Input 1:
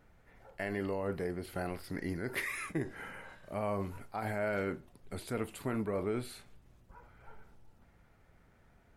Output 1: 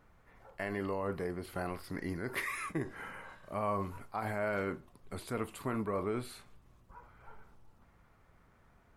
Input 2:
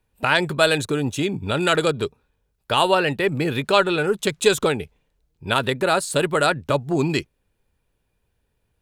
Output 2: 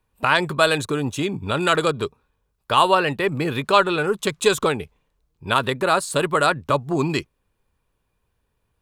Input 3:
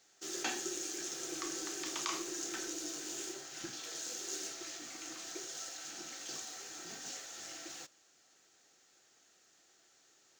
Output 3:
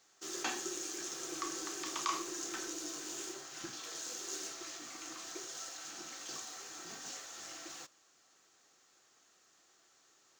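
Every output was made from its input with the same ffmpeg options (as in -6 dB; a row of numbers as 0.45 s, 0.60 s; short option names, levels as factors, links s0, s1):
-af "equalizer=f=1100:t=o:w=0.39:g=8.5,volume=0.891"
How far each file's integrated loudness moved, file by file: -0.5 LU, 0.0 LU, -0.5 LU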